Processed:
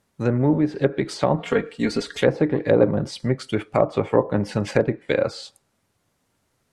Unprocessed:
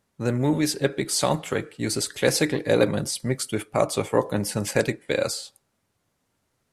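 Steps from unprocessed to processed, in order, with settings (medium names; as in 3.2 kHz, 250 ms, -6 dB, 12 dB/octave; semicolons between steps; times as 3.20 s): low-pass that closes with the level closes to 960 Hz, closed at -18 dBFS; 1.38–2.21 s: comb 4.3 ms, depth 72%; trim +3.5 dB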